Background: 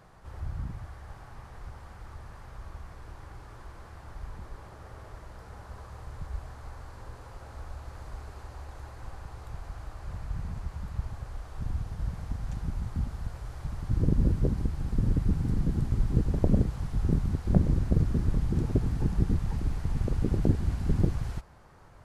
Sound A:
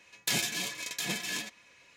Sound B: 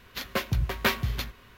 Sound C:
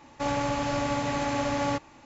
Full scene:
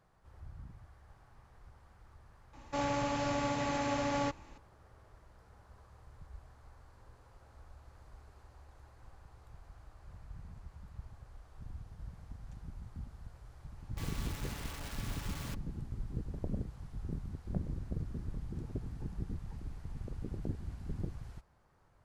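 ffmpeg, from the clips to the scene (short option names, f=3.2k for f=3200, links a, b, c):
-filter_complex "[3:a]asplit=2[a][b];[0:a]volume=-14dB[c];[b]aeval=exprs='(mod(17.8*val(0)+1,2)-1)/17.8':c=same[d];[a]atrim=end=2.05,asetpts=PTS-STARTPTS,volume=-5.5dB,afade=t=in:d=0.004:c=hsin,afade=t=out:st=2.046:d=0.004:c=hsin,adelay=2530[e];[d]atrim=end=2.05,asetpts=PTS-STARTPTS,volume=-17dB,afade=t=in:d=0.004:c=hsin,afade=t=out:st=2.046:d=0.004:c=hsin,adelay=13770[f];[c][e][f]amix=inputs=3:normalize=0"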